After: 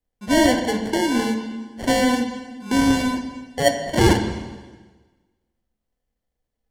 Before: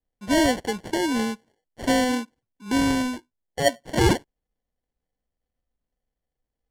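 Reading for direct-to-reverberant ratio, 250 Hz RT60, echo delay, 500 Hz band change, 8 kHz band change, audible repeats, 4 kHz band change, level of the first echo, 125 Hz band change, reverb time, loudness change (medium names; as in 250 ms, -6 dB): 6.0 dB, 1.4 s, no echo, +3.5 dB, +3.0 dB, no echo, +3.0 dB, no echo, +4.0 dB, 1.3 s, +3.5 dB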